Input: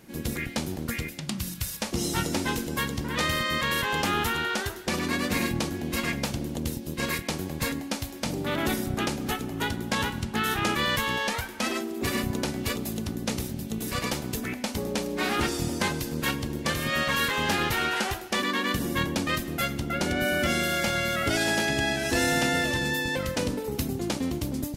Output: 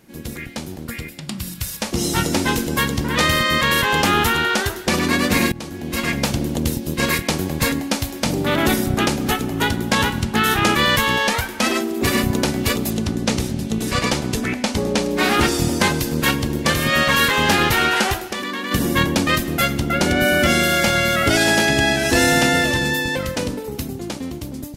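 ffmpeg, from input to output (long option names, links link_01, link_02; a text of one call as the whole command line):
ffmpeg -i in.wav -filter_complex "[0:a]asettb=1/sr,asplit=3[link_01][link_02][link_03];[link_01]atrim=end=0.854[link_04];[link_02]atrim=start=0.85:end=1.59,asetpts=PTS-STARTPTS,afade=type=in:duration=0.004:curve=qsin,afade=type=out:start_time=0.736:duration=0.004:curve=qsin,bandreject=frequency=6200:width=11[link_05];[link_03]atrim=start=1.586[link_06];[link_04][link_05]acrossfade=duration=0.004:curve1=hsin:curve2=qsin[link_07];[link_07][link_06]acrossfade=duration=0.004:curve1=qsin:curve2=hsin,asettb=1/sr,asplit=3[link_08][link_09][link_10];[link_08]atrim=end=12.904[link_11];[link_09]atrim=start=12.9:end=15.11,asetpts=PTS-STARTPTS,afade=type=in:duration=0.004:curve=qsin,afade=type=out:start_time=2.206:duration=0.004:curve=qsin,lowpass=8900[link_12];[link_10]atrim=start=15.106[link_13];[link_11][link_12]acrossfade=duration=0.004:curve1=hsin:curve2=qsin[link_14];[link_14][link_13]acrossfade=duration=0.004:curve1=qsin:curve2=hsin,asplit=3[link_15][link_16][link_17];[link_15]afade=type=out:start_time=18.24:duration=0.02[link_18];[link_16]acompressor=threshold=-31dB:ratio=10:attack=3.2:release=140:knee=1:detection=peak,afade=type=in:start_time=18.24:duration=0.02,afade=type=out:start_time=18.71:duration=0.02[link_19];[link_17]afade=type=in:start_time=18.71:duration=0.02[link_20];[link_18][link_19][link_20]amix=inputs=3:normalize=0,asplit=2[link_21][link_22];[link_21]atrim=end=5.52,asetpts=PTS-STARTPTS,afade=type=out:start_time=5.516:duration=0.004:curve=hsin:silence=0.125893[link_23];[link_22]atrim=start=5.52,asetpts=PTS-STARTPTS,afade=type=in:duration=0.78:silence=0.125893[link_24];[link_23][link_24]concat=n=2:v=0:a=1,dynaudnorm=framelen=210:gausssize=17:maxgain=10.5dB" out.wav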